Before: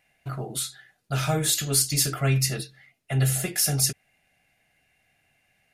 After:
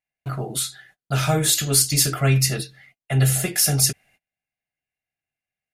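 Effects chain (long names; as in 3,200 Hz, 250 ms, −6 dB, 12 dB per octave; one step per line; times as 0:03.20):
noise gate −57 dBFS, range −28 dB
level +4.5 dB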